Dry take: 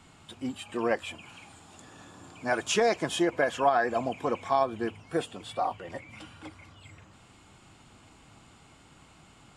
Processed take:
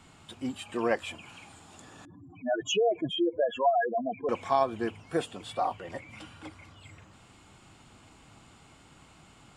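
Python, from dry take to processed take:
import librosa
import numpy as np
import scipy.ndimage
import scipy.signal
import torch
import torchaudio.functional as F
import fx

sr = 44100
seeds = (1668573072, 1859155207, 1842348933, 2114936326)

y = fx.spec_expand(x, sr, power=4.0, at=(2.05, 4.29))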